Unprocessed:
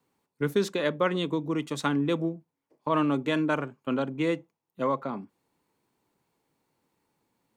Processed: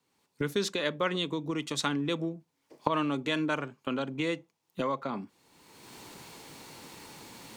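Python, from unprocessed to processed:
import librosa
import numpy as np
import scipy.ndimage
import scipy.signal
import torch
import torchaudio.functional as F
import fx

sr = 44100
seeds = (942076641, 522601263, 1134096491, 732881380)

y = fx.recorder_agc(x, sr, target_db=-19.0, rise_db_per_s=32.0, max_gain_db=30)
y = fx.peak_eq(y, sr, hz=4700.0, db=9.0, octaves=2.5)
y = y * 10.0 ** (-5.5 / 20.0)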